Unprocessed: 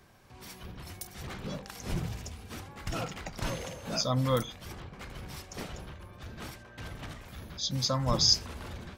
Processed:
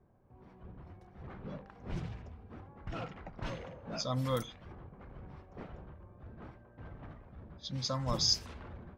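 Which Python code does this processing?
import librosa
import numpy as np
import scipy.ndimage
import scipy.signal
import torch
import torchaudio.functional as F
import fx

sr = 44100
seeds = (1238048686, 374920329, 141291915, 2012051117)

y = fx.env_lowpass(x, sr, base_hz=660.0, full_db=-23.5)
y = F.gain(torch.from_numpy(y), -5.5).numpy()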